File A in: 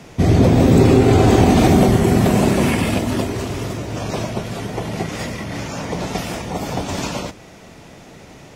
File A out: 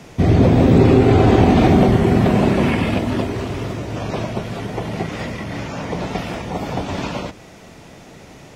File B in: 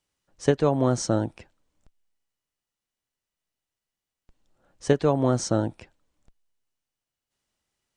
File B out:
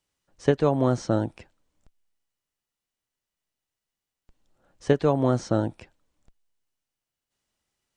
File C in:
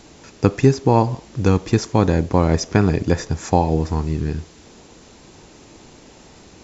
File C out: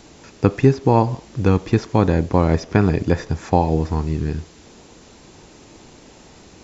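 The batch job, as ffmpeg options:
-filter_complex "[0:a]acrossover=split=4200[s0][s1];[s1]acompressor=threshold=0.00398:ratio=4:attack=1:release=60[s2];[s0][s2]amix=inputs=2:normalize=0"

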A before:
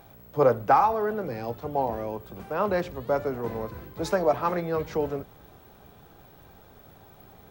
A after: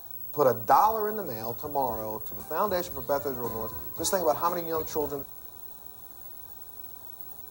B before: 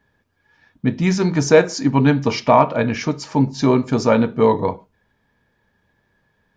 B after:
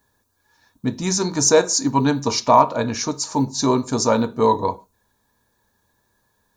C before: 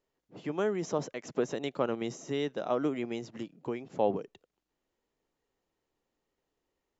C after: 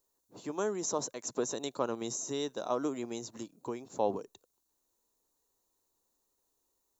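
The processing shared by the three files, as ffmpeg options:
-af "equalizer=f=160:t=o:w=0.33:g=-9,equalizer=f=1000:t=o:w=0.33:g=7,equalizer=f=2000:t=o:w=0.33:g=-5,equalizer=f=3150:t=o:w=0.33:g=-11,equalizer=f=5000:t=o:w=0.33:g=-8,aexciter=amount=5.9:drive=4.9:freq=3400,volume=0.708"

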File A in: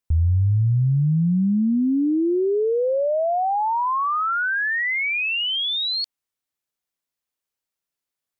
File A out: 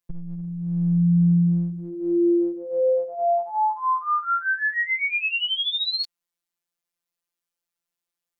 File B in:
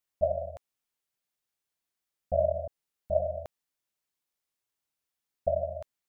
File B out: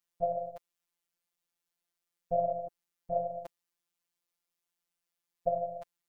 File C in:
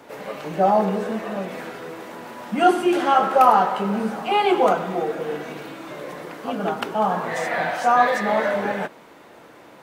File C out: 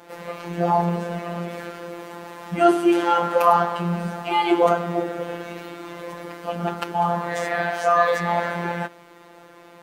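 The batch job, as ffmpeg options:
-af "afftfilt=real='hypot(re,im)*cos(PI*b)':imag='0':win_size=1024:overlap=0.75,volume=1.33"

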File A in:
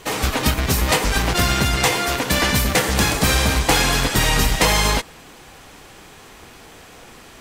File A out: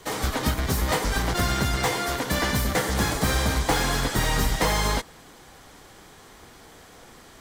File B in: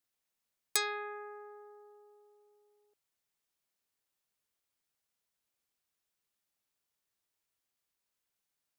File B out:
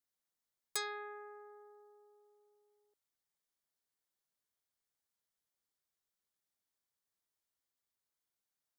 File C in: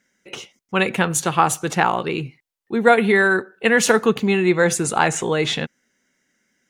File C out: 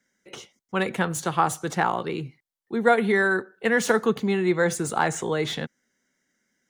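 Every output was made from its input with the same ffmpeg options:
-filter_complex "[0:a]equalizer=f=2600:t=o:w=0.28:g=-8,acrossover=split=220|1100|2200[s0][s1][s2][s3];[s3]asoftclip=type=tanh:threshold=0.0841[s4];[s0][s1][s2][s4]amix=inputs=4:normalize=0,volume=0.562"

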